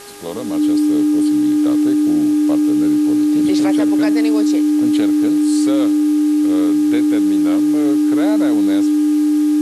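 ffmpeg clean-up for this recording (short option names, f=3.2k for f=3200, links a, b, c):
-af "bandreject=f=406.4:t=h:w=4,bandreject=f=812.8:t=h:w=4,bandreject=f=1.2192k:t=h:w=4,bandreject=f=1.6256k:t=h:w=4,bandreject=f=300:w=30,afwtdn=0.014"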